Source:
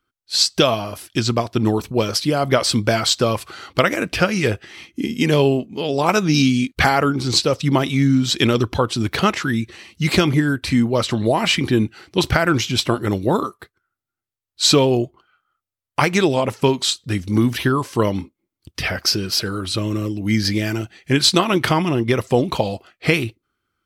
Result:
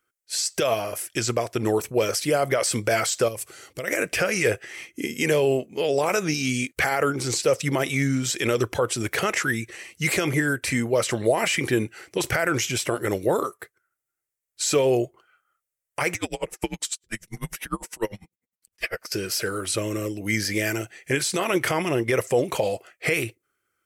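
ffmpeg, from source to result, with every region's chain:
ffmpeg -i in.wav -filter_complex "[0:a]asettb=1/sr,asplit=3[link_01][link_02][link_03];[link_01]atrim=end=3.284[link_04];[link_02]atrim=start=3.28:end=3.88,asetpts=PTS-STARTPTS,afade=type=in:duration=0.004:curve=qsin,afade=type=out:start_time=0.596:duration=0.004:curve=qsin,equalizer=frequency=1300:width=0.43:gain=-11.5,acompressor=threshold=-26dB:ratio=4:attack=3.2:release=140:knee=1:detection=peak[link_05];[link_03]atrim=start=3.876[link_06];[link_04][link_05]acrossfade=duration=0.004:curve1=hsin:curve2=qsin[link_07];[link_07][link_06]acrossfade=duration=0.004:curve1=qsin:curve2=hsin,asettb=1/sr,asplit=3[link_08][link_09][link_10];[link_08]atrim=end=16.144[link_11];[link_09]atrim=start=16.14:end=19.12,asetpts=PTS-STARTPTS,afade=type=in:duration=0.004:curve=qsin,afade=type=out:start_time=2.976:duration=0.004:curve=qsin,aecho=1:1:6.9:0.49,atrim=end_sample=131418,afreqshift=-89,aeval=exprs='val(0)*pow(10,-35*(0.5-0.5*cos(2*PI*10*n/s))/20)':channel_layout=same[link_12];[link_10]atrim=start=19.116[link_13];[link_11][link_12]acrossfade=duration=0.004:curve1=hsin:curve2=qsin[link_14];[link_14][link_13]acrossfade=duration=0.004:curve1=qsin:curve2=hsin,bass=frequency=250:gain=-13,treble=frequency=4000:gain=7,alimiter=limit=-11.5dB:level=0:latency=1:release=33,equalizer=frequency=125:width_type=o:width=1:gain=7,equalizer=frequency=250:width_type=o:width=1:gain=-4,equalizer=frequency=500:width_type=o:width=1:gain=6,equalizer=frequency=1000:width_type=o:width=1:gain=-5,equalizer=frequency=2000:width_type=o:width=1:gain=7,equalizer=frequency=4000:width_type=o:width=1:gain=-11,equalizer=frequency=8000:width_type=o:width=1:gain=4,volume=-1.5dB" out.wav

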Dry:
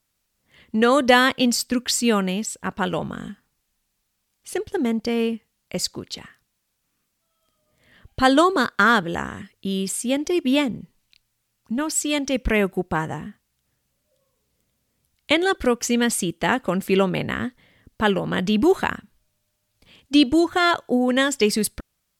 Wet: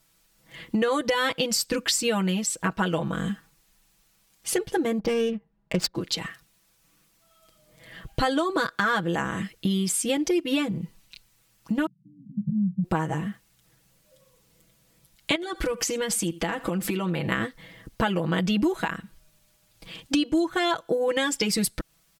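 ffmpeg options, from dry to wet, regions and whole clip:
ffmpeg -i in.wav -filter_complex "[0:a]asettb=1/sr,asplit=3[link_01][link_02][link_03];[link_01]atrim=end=4.994[link_04];[link_02]atrim=start=4.99:end=5.95,asetpts=PTS-STARTPTS,afade=type=in:duration=0.004:curve=qsin,afade=type=out:start_time=0.956:duration=0.004:curve=qsin,aecho=1:1:5:0.44,atrim=end_sample=42336,adynamicsmooth=sensitivity=4:basefreq=850[link_05];[link_03]atrim=start=5.946[link_06];[link_04][link_05]acrossfade=duration=0.004:curve1=hsin:curve2=qsin[link_07];[link_07][link_06]acrossfade=duration=0.004:curve1=qsin:curve2=hsin,asettb=1/sr,asplit=3[link_08][link_09][link_10];[link_08]atrim=end=11.864[link_11];[link_09]atrim=start=11.86:end=12.84,asetpts=PTS-STARTPTS,afade=type=in:duration=0.004:curve=qsin,afade=type=out:start_time=0.976:duration=0.004:curve=qsin,aeval=exprs='val(0)+0.5*0.0168*sgn(val(0))':channel_layout=same,asuperpass=centerf=160:order=12:qfactor=1.7[link_12];[link_10]atrim=start=12.836[link_13];[link_11][link_12]acrossfade=duration=0.004:curve1=hsin:curve2=qsin[link_14];[link_14][link_13]acrossfade=duration=0.004:curve1=qsin:curve2=hsin,asettb=1/sr,asplit=3[link_15][link_16][link_17];[link_15]atrim=end=15.354[link_18];[link_16]atrim=start=15.35:end=17.32,asetpts=PTS-STARTPTS,afade=type=in:duration=0.004:curve=qsin,afade=type=out:start_time=1.966:duration=0.004:curve=qsin,acompressor=threshold=-28dB:ratio=12:attack=3.2:release=140:knee=1:detection=peak,aecho=1:1:78:0.1,atrim=end_sample=86877[link_19];[link_17]atrim=start=17.316[link_20];[link_18][link_19]acrossfade=duration=0.004:curve1=hsin:curve2=qsin[link_21];[link_21][link_20]acrossfade=duration=0.004:curve1=qsin:curve2=hsin,alimiter=limit=-9.5dB:level=0:latency=1:release=171,aecho=1:1:6.1:0.88,acompressor=threshold=-31dB:ratio=4,volume=7dB" out.wav

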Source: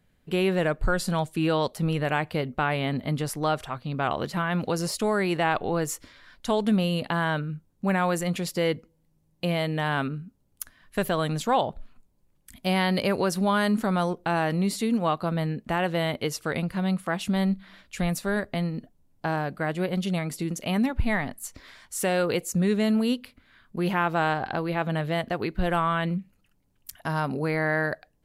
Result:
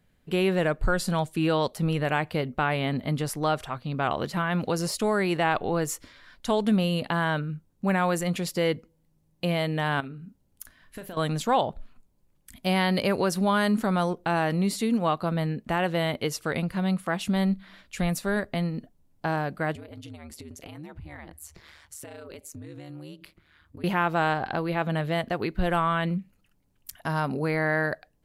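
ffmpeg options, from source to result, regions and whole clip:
ffmpeg -i in.wav -filter_complex "[0:a]asettb=1/sr,asplit=3[link_01][link_02][link_03];[link_01]atrim=end=10.004[link_04];[link_02]atrim=start=10:end=11.17,asetpts=PTS-STARTPTS,afade=type=in:duration=0.004:curve=qsin,afade=type=out:start_time=1.166:duration=0.004:curve=qsin,bandreject=frequency=1200:width=18,acompressor=threshold=-36dB:ratio=6:attack=3.2:release=140:knee=1:detection=peak,asplit=2[link_05][link_06];[link_06]adelay=37,volume=-11dB[link_07];[link_05][link_07]amix=inputs=2:normalize=0,atrim=end_sample=51597[link_08];[link_03]atrim=start=11.166[link_09];[link_04][link_08]acrossfade=duration=0.004:curve1=hsin:curve2=qsin[link_10];[link_10][link_09]acrossfade=duration=0.004:curve1=qsin:curve2=hsin,asettb=1/sr,asplit=3[link_11][link_12][link_13];[link_11]atrim=end=19.754[link_14];[link_12]atrim=start=19.75:end=23.84,asetpts=PTS-STARTPTS,afade=type=in:duration=0.004:curve=qsin,afade=type=out:start_time=4.086:duration=0.004:curve=qsin,acompressor=threshold=-36dB:ratio=8:attack=3.2:release=140:knee=1:detection=peak,aeval=exprs='val(0)*sin(2*PI*76*n/s)':channel_layout=same[link_15];[link_13]atrim=start=23.836[link_16];[link_14][link_15]acrossfade=duration=0.004:curve1=hsin:curve2=qsin[link_17];[link_17][link_16]acrossfade=duration=0.004:curve1=qsin:curve2=hsin" out.wav

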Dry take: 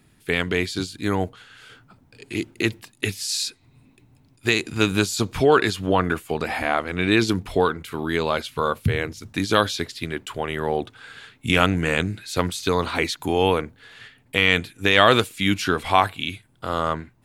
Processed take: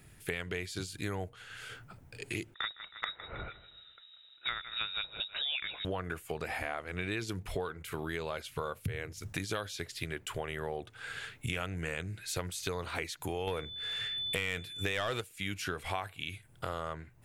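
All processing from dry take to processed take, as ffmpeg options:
ffmpeg -i in.wav -filter_complex "[0:a]asettb=1/sr,asplit=3[link_01][link_02][link_03];[link_01]atrim=end=2.544[link_04];[link_02]atrim=start=2.54:end=5.85,asetpts=PTS-STARTPTS,afade=type=in:duration=0.004:curve=qsin,afade=type=out:start_time=3.306:duration=0.004:curve=qsin,equalizer=frequency=490:width_type=o:width=0.88:gain=-5.5,aecho=1:1:159|318|477:0.141|0.0523|0.0193,atrim=end_sample=145971,lowpass=frequency=3300:width_type=q:width=0.5098,lowpass=frequency=3300:width_type=q:width=0.6013,lowpass=frequency=3300:width_type=q:width=0.9,lowpass=frequency=3300:width_type=q:width=2.563,afreqshift=-3900[link_05];[link_03]atrim=start=5.846[link_06];[link_04][link_05]acrossfade=duration=0.004:curve1=hsin:curve2=qsin[link_07];[link_07][link_06]acrossfade=duration=0.004:curve1=qsin:curve2=hsin,asettb=1/sr,asplit=3[link_08][link_09][link_10];[link_08]atrim=end=13.474[link_11];[link_09]atrim=start=13.47:end=15.21,asetpts=PTS-STARTPTS,afade=type=in:duration=0.004:curve=qsin,afade=type=out:start_time=1.736:duration=0.004:curve=qsin,acontrast=75,aeval=exprs='val(0)+0.0447*sin(2*PI*3500*n/s)':channel_layout=same[link_12];[link_10]atrim=start=15.206[link_13];[link_11][link_12]acrossfade=duration=0.004:curve1=hsin:curve2=qsin[link_14];[link_14][link_13]acrossfade=duration=0.004:curve1=qsin:curve2=hsin,equalizer=frequency=250:width_type=o:width=1:gain=-11,equalizer=frequency=1000:width_type=o:width=1:gain=-6,equalizer=frequency=4000:width_type=o:width=1:gain=-6,acompressor=threshold=-39dB:ratio=5,volume=4dB" out.wav

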